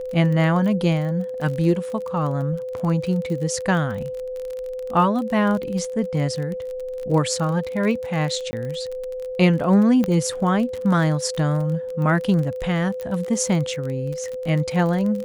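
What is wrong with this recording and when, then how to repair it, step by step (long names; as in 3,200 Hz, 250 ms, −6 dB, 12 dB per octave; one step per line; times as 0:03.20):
surface crackle 29 per second −27 dBFS
whistle 510 Hz −27 dBFS
0:08.51–0:08.53: drop-out 20 ms
0:10.04: click −11 dBFS
0:13.01: click −19 dBFS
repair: click removal
notch filter 510 Hz, Q 30
repair the gap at 0:08.51, 20 ms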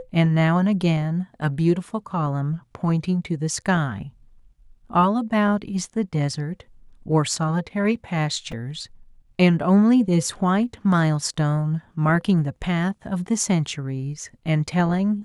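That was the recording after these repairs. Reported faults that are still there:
none of them is left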